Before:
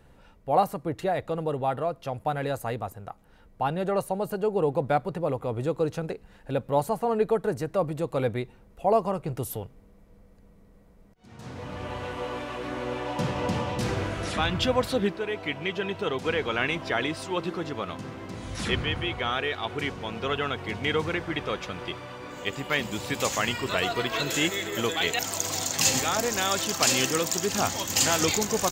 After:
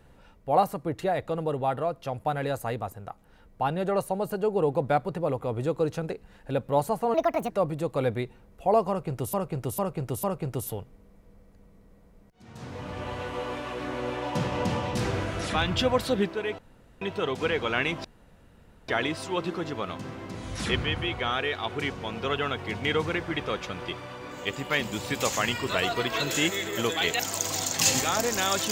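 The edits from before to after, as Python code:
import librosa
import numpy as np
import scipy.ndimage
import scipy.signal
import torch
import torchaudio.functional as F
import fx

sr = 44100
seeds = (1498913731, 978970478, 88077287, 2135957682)

y = fx.edit(x, sr, fx.speed_span(start_s=7.14, length_s=0.55, speed=1.51),
    fx.repeat(start_s=9.07, length_s=0.45, count=4),
    fx.room_tone_fill(start_s=15.42, length_s=0.43),
    fx.insert_room_tone(at_s=16.88, length_s=0.84), tone=tone)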